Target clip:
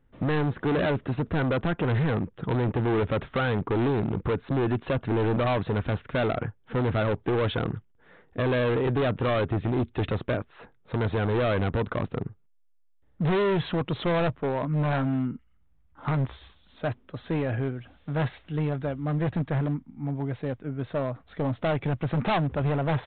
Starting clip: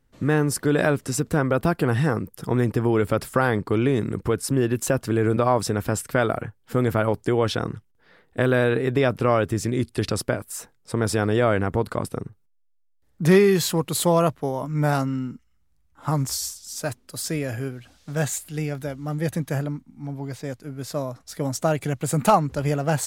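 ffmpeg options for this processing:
ffmpeg -i in.wav -af "highshelf=frequency=3000:gain=-9,aresample=8000,asoftclip=type=hard:threshold=-24dB,aresample=44100,volume=2dB" out.wav

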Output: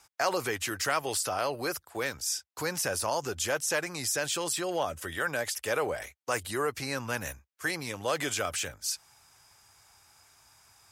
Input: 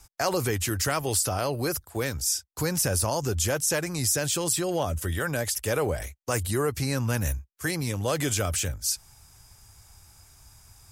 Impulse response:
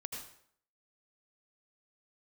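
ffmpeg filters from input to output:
-af "highpass=frequency=890:poles=1,highshelf=frequency=4900:gain=-12,volume=3dB"

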